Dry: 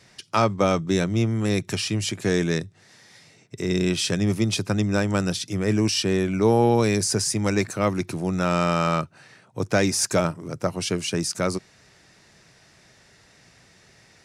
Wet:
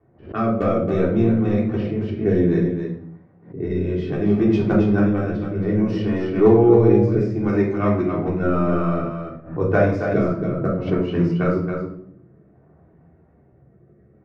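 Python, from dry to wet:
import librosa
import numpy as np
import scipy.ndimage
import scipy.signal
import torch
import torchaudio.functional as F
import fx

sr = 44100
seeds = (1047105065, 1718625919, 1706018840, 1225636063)

p1 = scipy.signal.sosfilt(scipy.signal.butter(4, 44.0, 'highpass', fs=sr, output='sos'), x)
p2 = fx.transient(p1, sr, attack_db=5, sustain_db=-3)
p3 = scipy.signal.sosfilt(scipy.signal.butter(2, 1400.0, 'lowpass', fs=sr, output='sos'), p2)
p4 = fx.env_lowpass(p3, sr, base_hz=840.0, full_db=-17.0)
p5 = fx.rotary(p4, sr, hz=0.6)
p6 = np.clip(p5, -10.0 ** (-8.5 / 20.0), 10.0 ** (-8.5 / 20.0))
p7 = fx.chorus_voices(p6, sr, voices=4, hz=0.3, base_ms=12, depth_ms=3.0, mix_pct=45)
p8 = p7 + fx.echo_single(p7, sr, ms=274, db=-6.5, dry=0)
p9 = fx.room_shoebox(p8, sr, seeds[0], volume_m3=900.0, walls='furnished', distance_m=3.4)
p10 = fx.pre_swell(p9, sr, db_per_s=140.0)
y = p10 * librosa.db_to_amplitude(2.0)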